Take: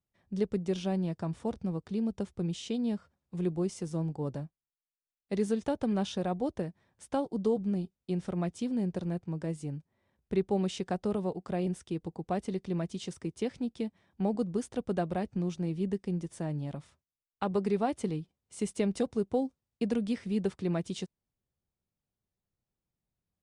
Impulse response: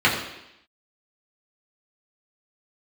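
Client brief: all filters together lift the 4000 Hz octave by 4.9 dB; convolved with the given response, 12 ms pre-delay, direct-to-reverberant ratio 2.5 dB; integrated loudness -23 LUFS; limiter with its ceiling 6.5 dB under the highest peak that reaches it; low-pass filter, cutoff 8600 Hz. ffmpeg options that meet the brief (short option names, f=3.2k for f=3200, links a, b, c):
-filter_complex "[0:a]lowpass=8.6k,equalizer=f=4k:t=o:g=6.5,alimiter=level_in=0.5dB:limit=-24dB:level=0:latency=1,volume=-0.5dB,asplit=2[a][b];[1:a]atrim=start_sample=2205,adelay=12[c];[b][c]afir=irnorm=-1:irlink=0,volume=-23dB[d];[a][d]amix=inputs=2:normalize=0,volume=10.5dB"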